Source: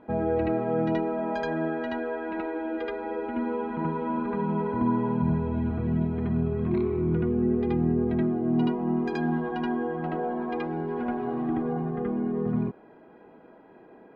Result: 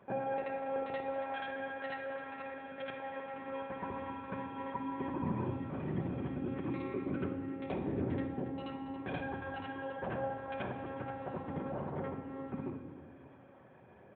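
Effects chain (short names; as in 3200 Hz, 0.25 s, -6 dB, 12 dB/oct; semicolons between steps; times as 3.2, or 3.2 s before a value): tilt +2 dB/oct; echo 0.271 s -15 dB; monotone LPC vocoder at 8 kHz 270 Hz; HPF 89 Hz 24 dB/oct; shoebox room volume 1200 m³, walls mixed, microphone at 1.1 m; gain -5.5 dB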